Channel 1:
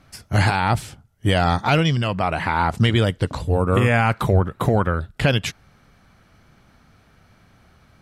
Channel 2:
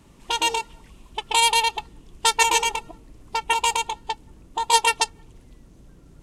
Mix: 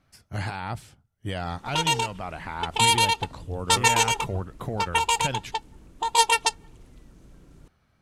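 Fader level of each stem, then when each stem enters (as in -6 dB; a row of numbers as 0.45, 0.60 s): -13.0, -1.5 dB; 0.00, 1.45 s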